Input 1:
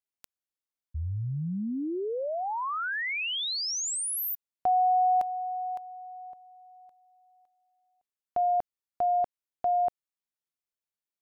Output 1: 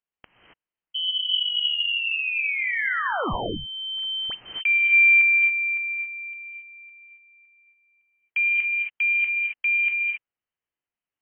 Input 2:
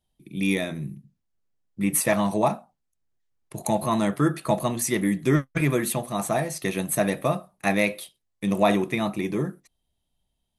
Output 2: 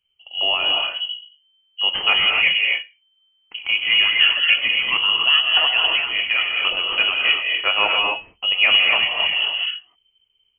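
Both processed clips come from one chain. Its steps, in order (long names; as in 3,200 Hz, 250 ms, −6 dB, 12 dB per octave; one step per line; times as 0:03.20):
stylus tracing distortion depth 0.021 ms
reverb whose tail is shaped and stops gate 300 ms rising, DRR 0 dB
voice inversion scrambler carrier 3,100 Hz
level +3 dB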